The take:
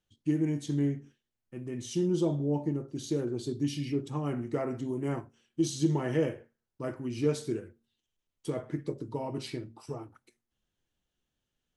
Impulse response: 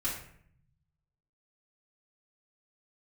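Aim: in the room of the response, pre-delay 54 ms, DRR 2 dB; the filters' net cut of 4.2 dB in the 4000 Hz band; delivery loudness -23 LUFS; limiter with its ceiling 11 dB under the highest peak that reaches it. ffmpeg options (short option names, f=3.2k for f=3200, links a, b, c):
-filter_complex "[0:a]equalizer=f=4k:t=o:g=-5.5,alimiter=level_in=2dB:limit=-24dB:level=0:latency=1,volume=-2dB,asplit=2[a][b];[1:a]atrim=start_sample=2205,adelay=54[c];[b][c]afir=irnorm=-1:irlink=0,volume=-7dB[d];[a][d]amix=inputs=2:normalize=0,volume=11.5dB"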